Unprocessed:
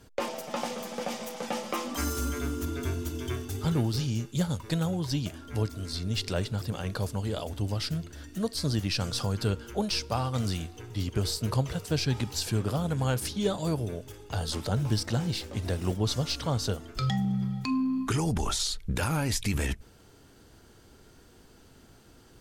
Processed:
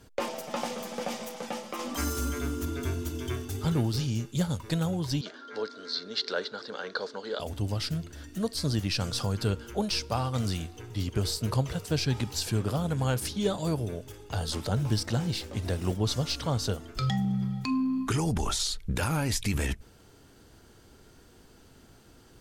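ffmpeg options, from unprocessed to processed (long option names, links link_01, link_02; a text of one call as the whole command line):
ffmpeg -i in.wav -filter_complex "[0:a]asettb=1/sr,asplit=3[link_01][link_02][link_03];[link_01]atrim=end=5.214[link_04];[link_02]atrim=start=5.21:end=7.4,asetpts=PTS-STARTPTS,afade=type=in:duration=0.004:curve=qsin,afade=type=out:start_time=2.186:duration=0.004:curve=qsin,highpass=frequency=280:width=0.5412,highpass=frequency=280:width=1.3066,equalizer=frequency=320:width_type=q:width=4:gain=-7,equalizer=frequency=460:width_type=q:width=4:gain=5,equalizer=frequency=700:width_type=q:width=4:gain=-4,equalizer=frequency=1500:width_type=q:width=4:gain=9,equalizer=frequency=2600:width_type=q:width=4:gain=-8,equalizer=frequency=4100:width_type=q:width=4:gain=8,lowpass=frequency=5400:width=0.5412,lowpass=frequency=5400:width=1.3066[link_05];[link_03]atrim=start=7.396[link_06];[link_04][link_05]acrossfade=duration=0.004:curve1=hsin:curve2=qsin[link_07];[link_07][link_06]acrossfade=duration=0.004:curve1=qsin:curve2=hsin,asplit=2[link_08][link_09];[link_08]atrim=end=1.79,asetpts=PTS-STARTPTS,afade=type=out:start_time=1.15:duration=0.64:silence=0.501187[link_10];[link_09]atrim=start=1.79,asetpts=PTS-STARTPTS,afade=type=in:duration=0.004:curve=hsin:silence=0.501187[link_11];[link_10][link_11]concat=n=2:v=0:a=1" out.wav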